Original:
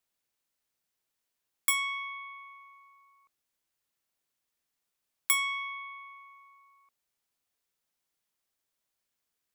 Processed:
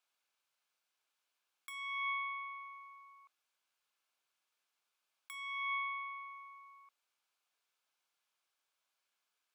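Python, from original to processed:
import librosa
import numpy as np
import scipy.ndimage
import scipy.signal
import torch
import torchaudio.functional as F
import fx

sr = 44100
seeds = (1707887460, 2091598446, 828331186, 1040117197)

y = scipy.signal.sosfilt(scipy.signal.butter(2, 1500.0, 'highpass', fs=sr, output='sos'), x)
y = fx.tilt_eq(y, sr, slope=-5.0)
y = fx.notch(y, sr, hz=1900.0, q=5.3)
y = fx.over_compress(y, sr, threshold_db=-47.0, ratio=-1.0)
y = y * librosa.db_to_amplitude(7.0)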